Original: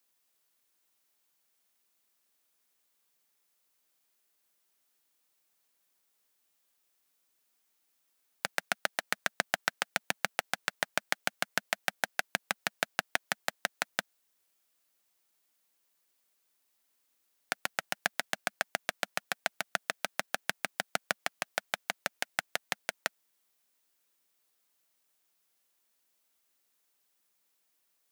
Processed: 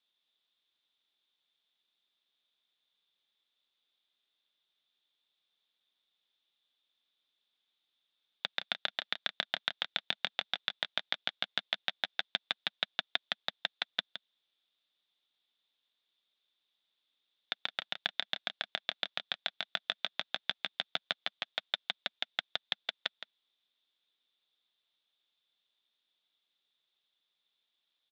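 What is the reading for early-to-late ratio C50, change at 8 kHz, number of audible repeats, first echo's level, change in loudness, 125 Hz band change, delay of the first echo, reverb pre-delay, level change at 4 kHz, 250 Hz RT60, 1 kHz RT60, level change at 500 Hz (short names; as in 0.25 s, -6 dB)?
none, under -20 dB, 1, -11.0 dB, -1.5 dB, -8.0 dB, 0.166 s, none, +5.0 dB, none, none, -8.0 dB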